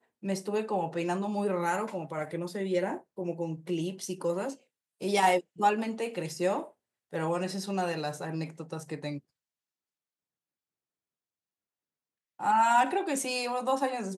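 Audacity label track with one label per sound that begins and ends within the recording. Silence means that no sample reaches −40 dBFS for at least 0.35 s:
5.010000	6.670000	sound
7.130000	9.180000	sound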